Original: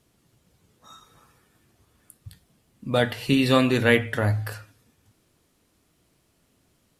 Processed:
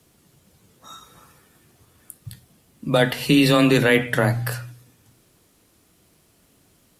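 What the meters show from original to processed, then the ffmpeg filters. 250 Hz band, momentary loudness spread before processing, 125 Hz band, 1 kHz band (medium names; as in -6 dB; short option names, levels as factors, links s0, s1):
+4.0 dB, 11 LU, +3.0 dB, +3.0 dB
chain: -af "afreqshift=15,highshelf=f=8700:g=6,bandreject=f=122.2:t=h:w=4,bandreject=f=244.4:t=h:w=4,alimiter=level_in=3.76:limit=0.891:release=50:level=0:latency=1,volume=0.531"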